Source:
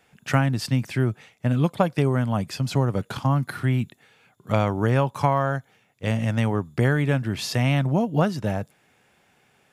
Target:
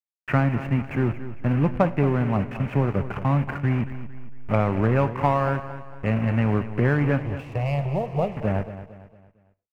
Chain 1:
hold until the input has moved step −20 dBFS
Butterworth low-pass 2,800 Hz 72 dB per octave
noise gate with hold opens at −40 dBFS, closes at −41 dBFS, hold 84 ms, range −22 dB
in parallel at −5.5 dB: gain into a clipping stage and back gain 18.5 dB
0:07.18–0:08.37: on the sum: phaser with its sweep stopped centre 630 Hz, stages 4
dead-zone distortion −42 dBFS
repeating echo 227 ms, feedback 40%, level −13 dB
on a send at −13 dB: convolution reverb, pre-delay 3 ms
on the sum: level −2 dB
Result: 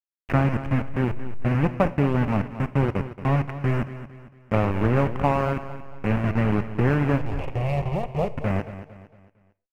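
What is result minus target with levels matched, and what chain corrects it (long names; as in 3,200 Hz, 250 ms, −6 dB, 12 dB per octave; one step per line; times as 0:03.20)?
hold until the input has moved: distortion +8 dB; dead-zone distortion: distortion +7 dB
hold until the input has moved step −28.5 dBFS
Butterworth low-pass 2,800 Hz 72 dB per octave
noise gate with hold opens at −40 dBFS, closes at −41 dBFS, hold 84 ms, range −22 dB
in parallel at −5.5 dB: gain into a clipping stage and back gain 18.5 dB
0:07.18–0:08.37: on the sum: phaser with its sweep stopped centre 630 Hz, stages 4
dead-zone distortion −50 dBFS
repeating echo 227 ms, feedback 40%, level −13 dB
on a send at −13 dB: convolution reverb, pre-delay 3 ms
on the sum: level −2 dB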